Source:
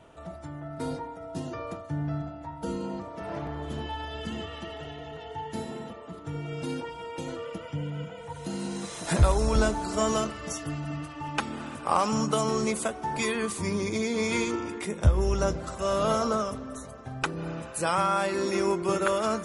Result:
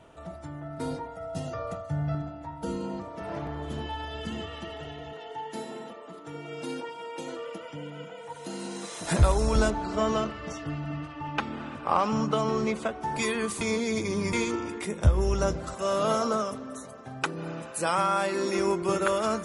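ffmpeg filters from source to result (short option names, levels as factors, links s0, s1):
-filter_complex "[0:a]asettb=1/sr,asplit=3[s0][s1][s2];[s0]atrim=end=1.064[s3];[s1]atrim=start=1.06:end=2.15,asetpts=PTS-STARTPTS,afade=t=in:d=0.004:c=qsin,afade=t=out:st=1.086:d=0.004:c=qsin,aecho=1:1:1.5:0.65,atrim=end_sample=48069[s4];[s2]atrim=start=2.146[s5];[s3][s4]acrossfade=d=0.004:c1=hsin:c2=qsin[s6];[s6][s5]acrossfade=d=0.004:c1=qsin:c2=hsin,asettb=1/sr,asplit=3[s7][s8][s9];[s7]atrim=end=5.134[s10];[s8]atrim=start=5.13:end=9.01,asetpts=PTS-STARTPTS,afade=t=in:d=0.004:c=qsin,afade=t=out:st=3.876:d=0.004:c=qsin,highpass=260[s11];[s9]atrim=start=9.006[s12];[s10][s11]acrossfade=d=0.004:c1=hsin:c2=qsin[s13];[s13][s12]acrossfade=d=0.004:c1=qsin:c2=hsin,asettb=1/sr,asplit=3[s14][s15][s16];[s14]atrim=end=9.704[s17];[s15]atrim=start=9.7:end=13.01,asetpts=PTS-STARTPTS,afade=t=in:d=0.004:c=qsin,afade=t=out:st=3.306:d=0.004:c=qsin,lowpass=3800[s18];[s16]atrim=start=13.006[s19];[s17][s18]acrossfade=d=0.004:c1=hsin:c2=qsin[s20];[s20][s19]acrossfade=d=0.004:c1=qsin:c2=hsin,asettb=1/sr,asplit=3[s21][s22][s23];[s21]atrim=end=15.744[s24];[s22]atrim=start=15.74:end=18.59,asetpts=PTS-STARTPTS,afade=t=in:d=0.004:c=qsin,afade=t=out:st=2.846:d=0.004:c=qsin,highpass=150[s25];[s23]atrim=start=18.586[s26];[s24][s25]acrossfade=d=0.004:c1=hsin:c2=qsin[s27];[s27][s26]acrossfade=d=0.004:c1=qsin:c2=hsin,asplit=3[s28][s29][s30];[s28]atrim=end=13.612[s31];[s29]atrim=start=13.608:end=14.332,asetpts=PTS-STARTPTS,areverse[s32];[s30]atrim=start=14.328[s33];[s31][s32]acrossfade=d=0.004:c1=hsin:c2=hsin[s34];[s34][s33]acrossfade=d=0.004:c1=hsin:c2=hsin"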